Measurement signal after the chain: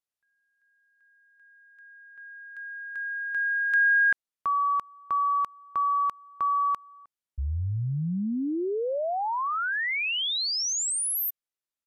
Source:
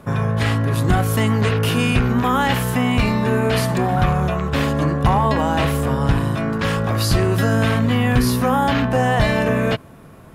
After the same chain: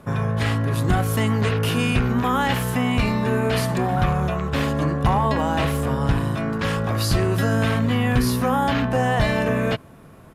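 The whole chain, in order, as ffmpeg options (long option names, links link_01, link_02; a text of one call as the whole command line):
ffmpeg -i in.wav -af "aresample=32000,aresample=44100,volume=-3dB" out.wav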